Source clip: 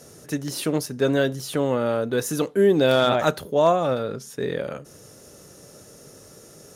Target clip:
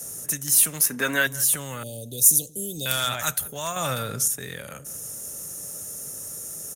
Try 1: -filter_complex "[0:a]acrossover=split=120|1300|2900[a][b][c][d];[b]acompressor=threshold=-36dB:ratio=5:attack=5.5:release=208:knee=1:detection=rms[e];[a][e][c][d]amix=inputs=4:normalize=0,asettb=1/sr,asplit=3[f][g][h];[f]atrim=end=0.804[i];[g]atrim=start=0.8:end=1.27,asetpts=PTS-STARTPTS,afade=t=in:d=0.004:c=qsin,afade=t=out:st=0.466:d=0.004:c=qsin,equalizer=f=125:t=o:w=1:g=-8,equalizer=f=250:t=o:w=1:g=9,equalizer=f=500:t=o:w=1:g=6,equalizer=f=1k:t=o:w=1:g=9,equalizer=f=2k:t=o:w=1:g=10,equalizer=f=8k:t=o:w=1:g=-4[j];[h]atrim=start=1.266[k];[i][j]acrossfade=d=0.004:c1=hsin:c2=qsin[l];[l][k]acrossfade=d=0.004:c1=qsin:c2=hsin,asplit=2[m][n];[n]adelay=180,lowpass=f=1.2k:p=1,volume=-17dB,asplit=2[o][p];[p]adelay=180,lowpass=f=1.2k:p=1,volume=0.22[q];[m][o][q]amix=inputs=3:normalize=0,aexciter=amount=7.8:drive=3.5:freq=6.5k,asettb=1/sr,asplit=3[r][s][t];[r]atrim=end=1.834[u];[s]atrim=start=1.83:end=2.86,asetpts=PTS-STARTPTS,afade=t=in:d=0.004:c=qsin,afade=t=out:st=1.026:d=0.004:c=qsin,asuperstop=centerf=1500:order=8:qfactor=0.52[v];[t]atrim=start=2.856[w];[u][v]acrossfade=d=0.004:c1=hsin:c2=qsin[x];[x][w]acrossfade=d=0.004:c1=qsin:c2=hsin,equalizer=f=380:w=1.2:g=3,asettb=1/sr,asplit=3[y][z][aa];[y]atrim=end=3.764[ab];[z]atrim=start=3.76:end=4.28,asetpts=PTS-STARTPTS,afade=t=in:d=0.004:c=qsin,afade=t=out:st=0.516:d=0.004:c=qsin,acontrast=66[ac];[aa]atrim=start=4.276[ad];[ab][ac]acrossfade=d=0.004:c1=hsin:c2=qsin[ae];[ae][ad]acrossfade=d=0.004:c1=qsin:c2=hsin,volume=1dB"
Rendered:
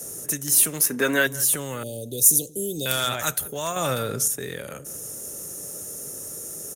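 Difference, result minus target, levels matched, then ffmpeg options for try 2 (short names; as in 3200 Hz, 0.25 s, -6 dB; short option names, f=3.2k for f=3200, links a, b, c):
500 Hz band +5.0 dB
-filter_complex "[0:a]acrossover=split=120|1300|2900[a][b][c][d];[b]acompressor=threshold=-36dB:ratio=5:attack=5.5:release=208:knee=1:detection=rms[e];[a][e][c][d]amix=inputs=4:normalize=0,asettb=1/sr,asplit=3[f][g][h];[f]atrim=end=0.804[i];[g]atrim=start=0.8:end=1.27,asetpts=PTS-STARTPTS,afade=t=in:d=0.004:c=qsin,afade=t=out:st=0.466:d=0.004:c=qsin,equalizer=f=125:t=o:w=1:g=-8,equalizer=f=250:t=o:w=1:g=9,equalizer=f=500:t=o:w=1:g=6,equalizer=f=1k:t=o:w=1:g=9,equalizer=f=2k:t=o:w=1:g=10,equalizer=f=8k:t=o:w=1:g=-4[j];[h]atrim=start=1.266[k];[i][j]acrossfade=d=0.004:c1=hsin:c2=qsin[l];[l][k]acrossfade=d=0.004:c1=qsin:c2=hsin,asplit=2[m][n];[n]adelay=180,lowpass=f=1.2k:p=1,volume=-17dB,asplit=2[o][p];[p]adelay=180,lowpass=f=1.2k:p=1,volume=0.22[q];[m][o][q]amix=inputs=3:normalize=0,aexciter=amount=7.8:drive=3.5:freq=6.5k,asettb=1/sr,asplit=3[r][s][t];[r]atrim=end=1.834[u];[s]atrim=start=1.83:end=2.86,asetpts=PTS-STARTPTS,afade=t=in:d=0.004:c=qsin,afade=t=out:st=1.026:d=0.004:c=qsin,asuperstop=centerf=1500:order=8:qfactor=0.52[v];[t]atrim=start=2.856[w];[u][v]acrossfade=d=0.004:c1=hsin:c2=qsin[x];[x][w]acrossfade=d=0.004:c1=qsin:c2=hsin,equalizer=f=380:w=1.2:g=-5,asettb=1/sr,asplit=3[y][z][aa];[y]atrim=end=3.764[ab];[z]atrim=start=3.76:end=4.28,asetpts=PTS-STARTPTS,afade=t=in:d=0.004:c=qsin,afade=t=out:st=0.516:d=0.004:c=qsin,acontrast=66[ac];[aa]atrim=start=4.276[ad];[ab][ac]acrossfade=d=0.004:c1=hsin:c2=qsin[ae];[ae][ad]acrossfade=d=0.004:c1=qsin:c2=hsin,volume=1dB"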